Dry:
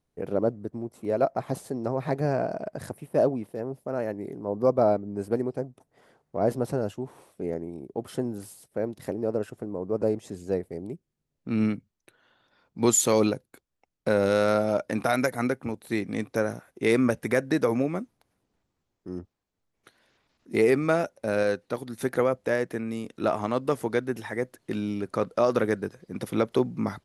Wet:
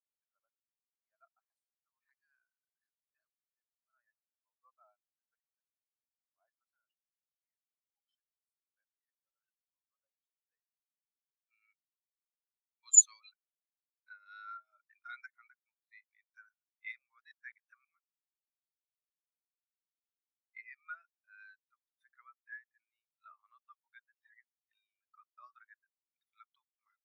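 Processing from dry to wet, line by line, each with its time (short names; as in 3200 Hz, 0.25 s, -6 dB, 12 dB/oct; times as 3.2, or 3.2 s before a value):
1.53–3.32 HPF 1100 Hz
16.98–17.85 reverse
whole clip: HPF 1200 Hz 24 dB/oct; bell 4000 Hz +6 dB 1.6 oct; spectral expander 2.5:1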